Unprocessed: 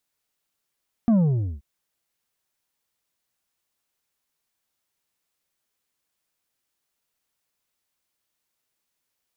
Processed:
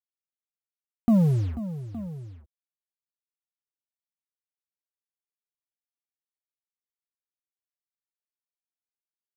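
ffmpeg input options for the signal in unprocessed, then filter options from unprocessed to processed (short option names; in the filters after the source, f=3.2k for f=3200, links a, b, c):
-f lavfi -i "aevalsrc='0.168*clip((0.53-t)/0.47,0,1)*tanh(2*sin(2*PI*240*0.53/log(65/240)*(exp(log(65/240)*t/0.53)-1)))/tanh(2)':d=0.53:s=44100"
-af "acrusher=bits=6:mix=0:aa=0.5,aecho=1:1:489|866:0.211|0.158"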